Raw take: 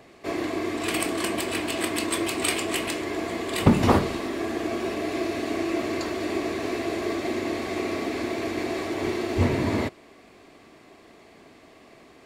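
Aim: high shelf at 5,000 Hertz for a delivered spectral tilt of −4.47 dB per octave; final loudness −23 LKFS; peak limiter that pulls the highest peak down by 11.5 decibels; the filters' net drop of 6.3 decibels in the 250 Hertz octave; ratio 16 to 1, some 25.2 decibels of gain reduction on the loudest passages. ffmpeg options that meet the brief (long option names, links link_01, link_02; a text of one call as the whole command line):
ffmpeg -i in.wav -af "equalizer=frequency=250:width_type=o:gain=-9,highshelf=frequency=5000:gain=-7,acompressor=threshold=-43dB:ratio=16,volume=27.5dB,alimiter=limit=-14dB:level=0:latency=1" out.wav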